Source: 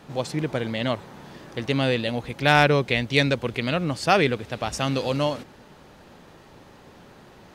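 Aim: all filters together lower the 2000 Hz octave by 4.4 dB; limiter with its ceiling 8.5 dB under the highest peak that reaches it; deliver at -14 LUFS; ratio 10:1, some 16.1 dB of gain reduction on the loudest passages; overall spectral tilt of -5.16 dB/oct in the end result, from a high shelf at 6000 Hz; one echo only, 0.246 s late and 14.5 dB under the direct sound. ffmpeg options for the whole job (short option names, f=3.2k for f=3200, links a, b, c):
-af "equalizer=f=2k:t=o:g=-6.5,highshelf=f=6k:g=3.5,acompressor=threshold=-31dB:ratio=10,alimiter=level_in=4dB:limit=-24dB:level=0:latency=1,volume=-4dB,aecho=1:1:246:0.188,volume=25.5dB"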